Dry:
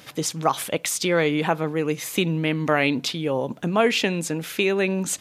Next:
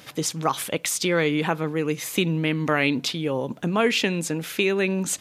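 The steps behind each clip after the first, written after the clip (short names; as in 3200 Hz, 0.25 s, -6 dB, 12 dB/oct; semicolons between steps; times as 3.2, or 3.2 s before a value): dynamic EQ 690 Hz, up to -5 dB, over -33 dBFS, Q 1.9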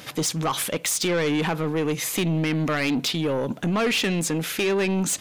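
in parallel at -1.5 dB: limiter -18 dBFS, peak gain reduction 10.5 dB; on the sum: soft clip -18.5 dBFS, distortion -11 dB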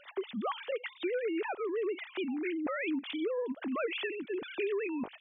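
sine-wave speech; compressor, threshold -22 dBFS, peak gain reduction 7.5 dB; gain -8 dB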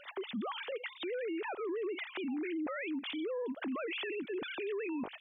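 limiter -35 dBFS, peak gain reduction 10.5 dB; gain +3 dB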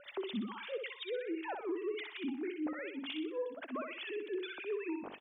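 harmonic tremolo 5.3 Hz, depth 100%, crossover 1800 Hz; on a send: feedback echo 62 ms, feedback 35%, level -5 dB; on the sum: gain +1 dB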